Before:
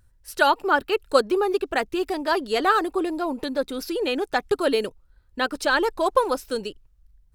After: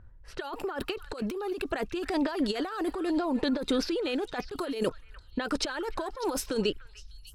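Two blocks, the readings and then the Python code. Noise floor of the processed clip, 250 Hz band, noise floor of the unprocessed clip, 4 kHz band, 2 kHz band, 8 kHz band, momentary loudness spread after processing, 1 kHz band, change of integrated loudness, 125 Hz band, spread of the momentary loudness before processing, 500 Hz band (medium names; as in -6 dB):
-52 dBFS, -1.5 dB, -59 dBFS, -6.0 dB, -13.0 dB, -2.0 dB, 8 LU, -13.5 dB, -8.0 dB, no reading, 8 LU, -9.0 dB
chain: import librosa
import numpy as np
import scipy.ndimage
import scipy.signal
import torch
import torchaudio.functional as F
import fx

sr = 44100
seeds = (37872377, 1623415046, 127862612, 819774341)

y = fx.env_lowpass(x, sr, base_hz=1500.0, full_db=-19.5)
y = fx.over_compress(y, sr, threshold_db=-31.0, ratio=-1.0)
y = fx.echo_stepped(y, sr, ms=299, hz=1700.0, octaves=1.4, feedback_pct=70, wet_db=-11)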